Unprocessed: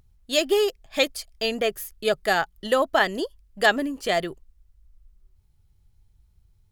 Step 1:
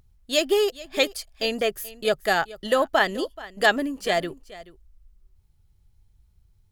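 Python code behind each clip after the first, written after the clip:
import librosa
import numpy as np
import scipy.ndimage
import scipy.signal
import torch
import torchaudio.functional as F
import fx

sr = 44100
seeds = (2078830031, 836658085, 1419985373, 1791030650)

y = x + 10.0 ** (-18.5 / 20.0) * np.pad(x, (int(430 * sr / 1000.0), 0))[:len(x)]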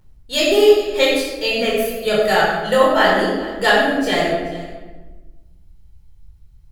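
y = fx.room_shoebox(x, sr, seeds[0], volume_m3=710.0, walls='mixed', distance_m=4.5)
y = y * 10.0 ** (-2.5 / 20.0)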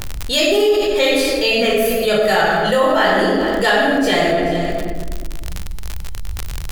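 y = fx.dmg_crackle(x, sr, seeds[1], per_s=67.0, level_db=-33.0)
y = fx.env_flatten(y, sr, amount_pct=70)
y = y * 10.0 ** (-5.5 / 20.0)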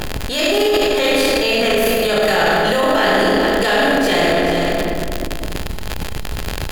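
y = fx.bin_compress(x, sr, power=0.6)
y = fx.transient(y, sr, attack_db=-10, sustain_db=12)
y = y * 10.0 ** (-3.5 / 20.0)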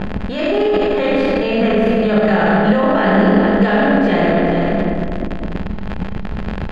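y = scipy.signal.sosfilt(scipy.signal.butter(2, 1900.0, 'lowpass', fs=sr, output='sos'), x)
y = fx.peak_eq(y, sr, hz=200.0, db=15.0, octaves=0.35)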